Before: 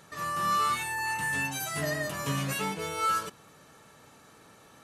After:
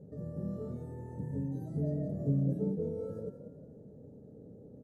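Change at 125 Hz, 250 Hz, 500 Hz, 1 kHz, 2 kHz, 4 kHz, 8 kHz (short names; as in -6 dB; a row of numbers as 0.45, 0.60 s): +4.0 dB, +3.5 dB, -1.0 dB, under -25 dB, under -35 dB, under -40 dB, under -35 dB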